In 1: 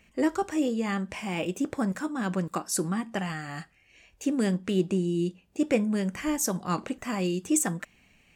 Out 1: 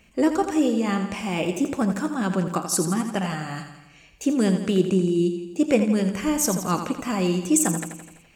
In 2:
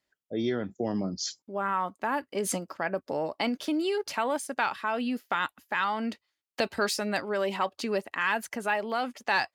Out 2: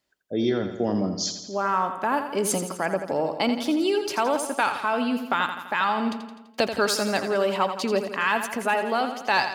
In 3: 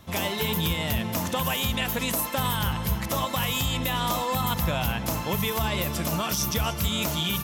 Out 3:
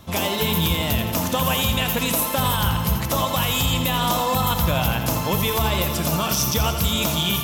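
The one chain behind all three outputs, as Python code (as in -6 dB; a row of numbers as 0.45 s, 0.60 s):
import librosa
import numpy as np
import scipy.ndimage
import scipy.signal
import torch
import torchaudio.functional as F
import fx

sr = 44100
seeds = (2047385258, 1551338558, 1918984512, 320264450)

y = fx.peak_eq(x, sr, hz=1900.0, db=-4.5, octaves=0.46)
y = fx.echo_feedback(y, sr, ms=84, feedback_pct=58, wet_db=-9)
y = y * librosa.db_to_amplitude(5.0)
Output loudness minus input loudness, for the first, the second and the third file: +5.5 LU, +5.0 LU, +5.5 LU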